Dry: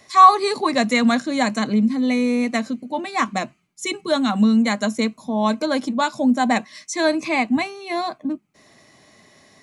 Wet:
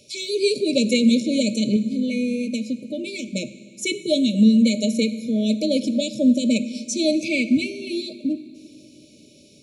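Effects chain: 1.76–3.33 compressor, threshold -22 dBFS, peak gain reduction 8 dB; brick-wall FIR band-stop 630–2200 Hz; on a send: reverb RT60 2.3 s, pre-delay 3 ms, DRR 12 dB; on the sum: gain +1.5 dB

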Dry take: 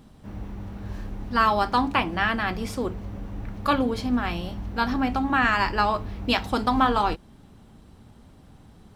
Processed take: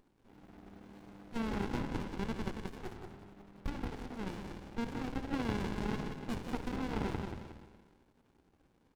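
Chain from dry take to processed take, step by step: Bessel high-pass 490 Hz, order 6; limiter -17.5 dBFS, peak gain reduction 9 dB; 1.83–4.27 chopper 11 Hz, depth 60%, duty 50%; feedback echo 0.18 s, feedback 31%, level -5.5 dB; spring tank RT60 1.4 s, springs 50 ms, chirp 55 ms, DRR 3 dB; running maximum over 65 samples; gain -6.5 dB

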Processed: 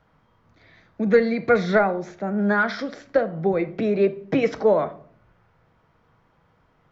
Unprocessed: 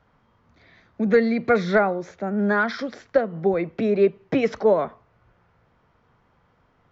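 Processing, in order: shoebox room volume 570 m³, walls furnished, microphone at 0.62 m

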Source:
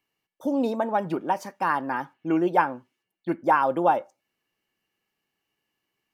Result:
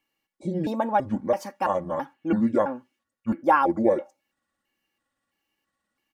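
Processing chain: trilling pitch shifter -7.5 st, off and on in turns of 0.332 s; comb 3.6 ms, depth 49%

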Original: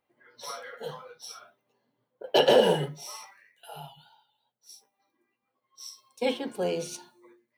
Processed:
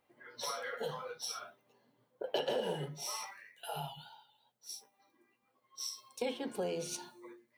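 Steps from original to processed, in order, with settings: compressor 4:1, threshold -40 dBFS, peak gain reduction 20.5 dB; gain +4 dB

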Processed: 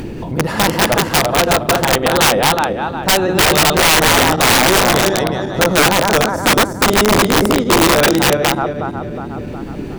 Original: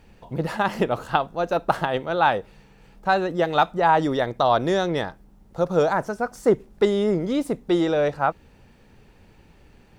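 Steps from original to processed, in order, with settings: regenerating reverse delay 0.182 s, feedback 61%, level -2.5 dB; upward compressor, threshold -29 dBFS; band noise 77–380 Hz -35 dBFS; wrapped overs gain 13.5 dB; gain +8 dB

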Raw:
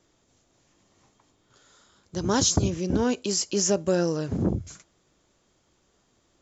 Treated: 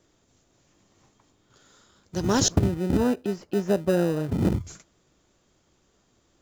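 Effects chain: 2.48–4.45 LPF 1300 Hz 12 dB/oct; in parallel at -10 dB: sample-and-hold 40×

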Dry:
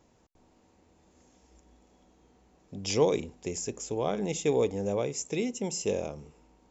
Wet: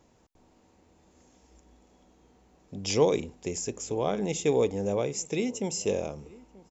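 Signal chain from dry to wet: outdoor echo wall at 160 m, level -22 dB; gain +1.5 dB

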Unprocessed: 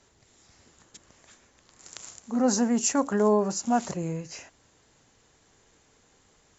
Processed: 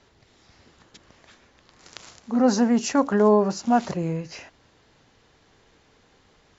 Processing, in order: LPF 5100 Hz 24 dB/oct; gain +4.5 dB

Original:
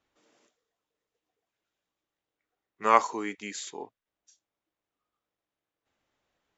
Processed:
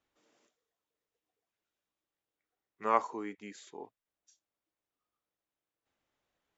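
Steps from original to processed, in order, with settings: 2.84–3.84 high shelf 2100 Hz -12 dB; gain -5 dB

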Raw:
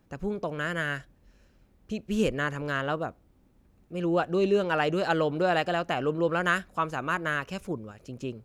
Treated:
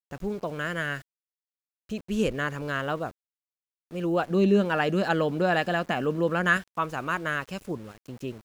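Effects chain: 4.3–6.57 small resonant body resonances 210/1700 Hz, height 11 dB, ringing for 70 ms; sample gate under -46 dBFS

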